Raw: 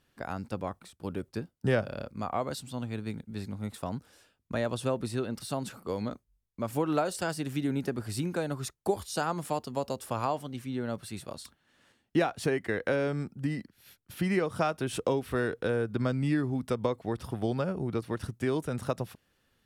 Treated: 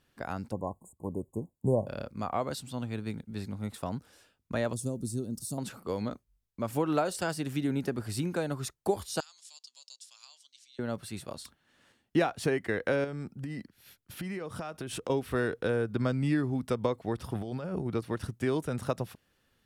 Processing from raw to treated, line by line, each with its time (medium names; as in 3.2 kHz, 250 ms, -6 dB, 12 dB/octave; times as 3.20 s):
0.52–1.87 s: spectral selection erased 1.1–6.6 kHz
4.73–5.58 s: FFT filter 250 Hz 0 dB, 2.2 kHz -28 dB, 6.6 kHz +5 dB
9.20–10.79 s: Butterworth band-pass 5.5 kHz, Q 1.4
13.04–15.10 s: compression 10:1, threshold -33 dBFS
17.35–17.86 s: compressor with a negative ratio -35 dBFS